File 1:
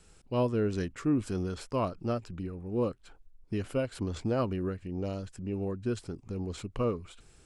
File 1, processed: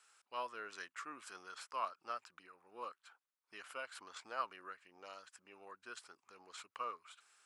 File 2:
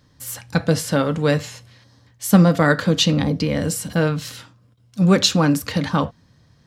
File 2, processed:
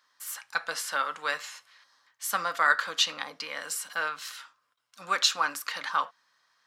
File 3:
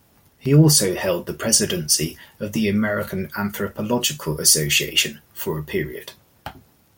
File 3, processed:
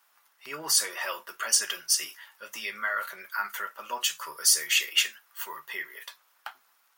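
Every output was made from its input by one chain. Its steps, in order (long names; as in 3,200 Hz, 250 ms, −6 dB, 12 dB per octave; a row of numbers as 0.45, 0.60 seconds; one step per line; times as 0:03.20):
high-pass with resonance 1,200 Hz, resonance Q 2
level −6.5 dB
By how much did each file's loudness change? −14.0, −10.0, −7.5 LU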